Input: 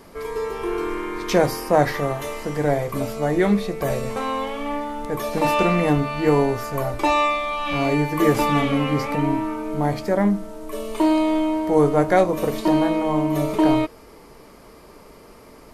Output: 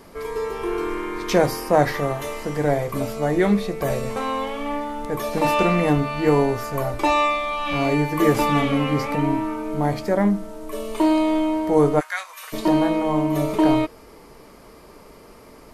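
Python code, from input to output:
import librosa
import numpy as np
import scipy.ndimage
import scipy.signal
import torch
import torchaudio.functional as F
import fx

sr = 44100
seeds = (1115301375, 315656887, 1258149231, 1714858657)

y = fx.highpass(x, sr, hz=1300.0, slope=24, at=(11.99, 12.52), fade=0.02)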